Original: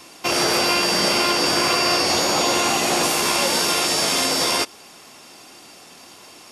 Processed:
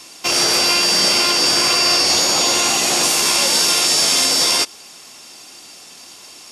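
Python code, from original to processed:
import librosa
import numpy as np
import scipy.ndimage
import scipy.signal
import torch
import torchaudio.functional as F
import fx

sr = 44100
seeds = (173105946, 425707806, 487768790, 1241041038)

y = fx.peak_eq(x, sr, hz=6500.0, db=9.5, octaves=2.4)
y = y * librosa.db_to_amplitude(-2.0)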